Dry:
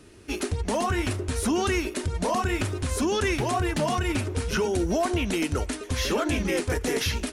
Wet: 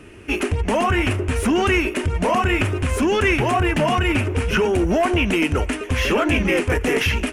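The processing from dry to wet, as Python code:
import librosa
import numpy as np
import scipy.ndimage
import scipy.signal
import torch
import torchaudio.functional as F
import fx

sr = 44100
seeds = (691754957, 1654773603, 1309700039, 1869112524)

y = 10.0 ** (-19.5 / 20.0) * np.tanh(x / 10.0 ** (-19.5 / 20.0))
y = fx.high_shelf_res(y, sr, hz=3300.0, db=-6.0, q=3.0)
y = y * 10.0 ** (8.0 / 20.0)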